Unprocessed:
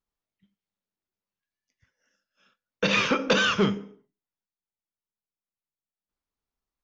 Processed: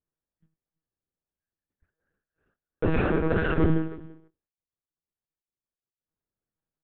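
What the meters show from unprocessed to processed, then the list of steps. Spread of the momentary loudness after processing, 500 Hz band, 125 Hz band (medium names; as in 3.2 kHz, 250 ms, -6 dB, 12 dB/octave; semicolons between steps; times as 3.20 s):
10 LU, 0.0 dB, +7.0 dB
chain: median filter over 41 samples; gate -48 dBFS, range -13 dB; graphic EQ with 31 bands 500 Hz +5 dB, 800 Hz +5 dB, 1.6 kHz +9 dB; in parallel at 0 dB: compressor with a negative ratio -28 dBFS; on the sum: peak limiter -18.5 dBFS, peak gain reduction 10.5 dB; distance through air 250 m; comb of notches 260 Hz; small resonant body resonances 310/1100 Hz, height 9 dB; on a send: delay 329 ms -21 dB; on the sum: monotone LPC vocoder at 8 kHz 160 Hz; trim +4.5 dB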